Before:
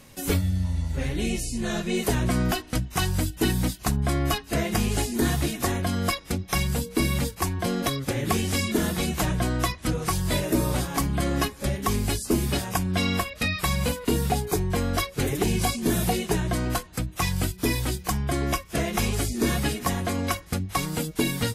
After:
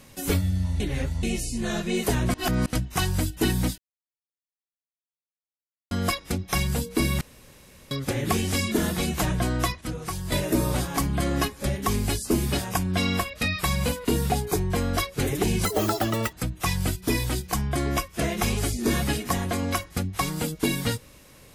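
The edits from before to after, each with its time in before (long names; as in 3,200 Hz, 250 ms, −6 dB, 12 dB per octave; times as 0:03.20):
0:00.80–0:01.23: reverse
0:02.34–0:02.66: reverse
0:03.78–0:05.91: silence
0:07.21–0:07.91: fill with room tone
0:09.81–0:10.32: clip gain −6 dB
0:15.65–0:16.89: play speed 182%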